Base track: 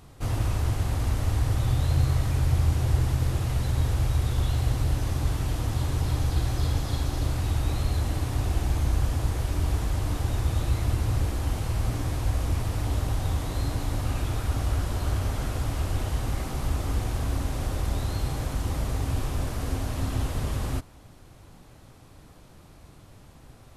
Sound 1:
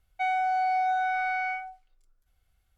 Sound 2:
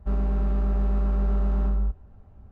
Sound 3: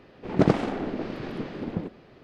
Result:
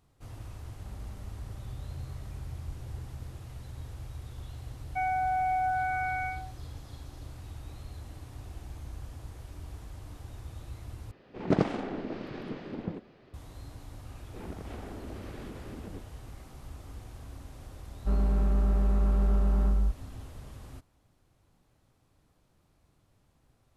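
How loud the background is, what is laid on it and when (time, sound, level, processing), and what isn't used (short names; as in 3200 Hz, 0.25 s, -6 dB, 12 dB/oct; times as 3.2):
base track -17.5 dB
0.8 add 2 -11.5 dB + negative-ratio compressor -30 dBFS, ratio -0.5
4.76 add 1 -2.5 dB + steep low-pass 2300 Hz
11.11 replace with 3 -5.5 dB
14.11 add 3 -9 dB + compressor, threshold -30 dBFS
18 add 2 -1.5 dB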